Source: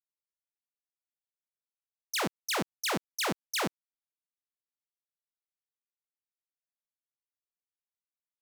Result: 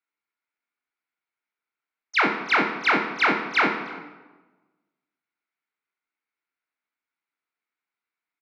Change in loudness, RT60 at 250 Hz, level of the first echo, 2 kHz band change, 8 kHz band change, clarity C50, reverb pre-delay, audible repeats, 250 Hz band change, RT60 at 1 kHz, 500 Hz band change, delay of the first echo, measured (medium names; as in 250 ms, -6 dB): +10.5 dB, 1.4 s, -20.5 dB, +15.0 dB, under -10 dB, 7.0 dB, 16 ms, 1, +8.5 dB, 1.2 s, +7.0 dB, 320 ms